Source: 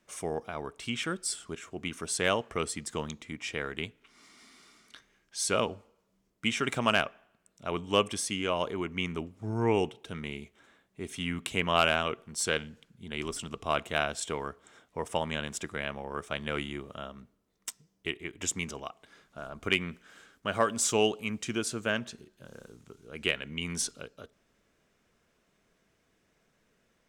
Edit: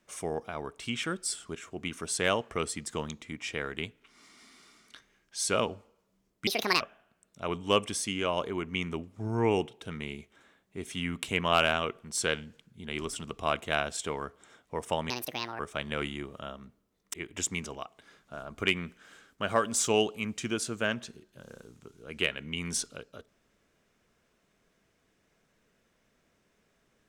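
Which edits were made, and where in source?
6.47–7.04 s: speed 169%
15.33–16.15 s: speed 165%
17.69–18.18 s: delete

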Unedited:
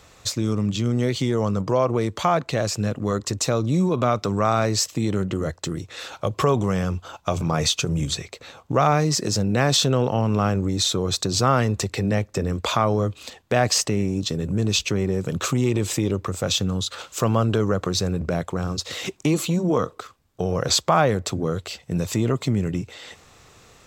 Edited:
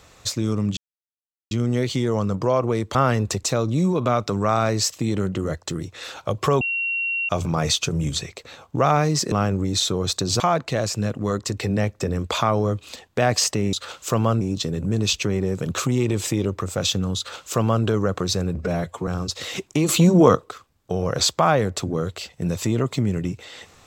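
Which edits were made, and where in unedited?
0.77 s: insert silence 0.74 s
2.21–3.39 s: swap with 11.44–11.92 s
6.57–7.25 s: bleep 2.74 kHz -21.5 dBFS
9.28–10.36 s: delete
16.83–17.51 s: copy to 14.07 s
18.24–18.57 s: stretch 1.5×
19.38–19.85 s: gain +7.5 dB

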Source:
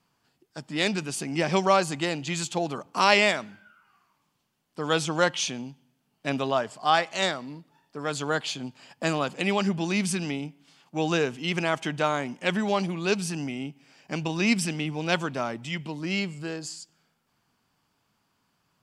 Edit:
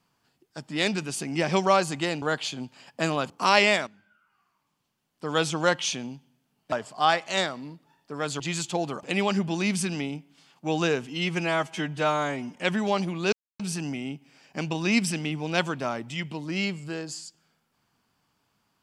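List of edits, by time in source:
2.22–2.85 s: swap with 8.25–9.33 s
3.42–4.90 s: fade in, from -13 dB
6.27–6.57 s: delete
11.40–12.37 s: stretch 1.5×
13.14 s: insert silence 0.27 s

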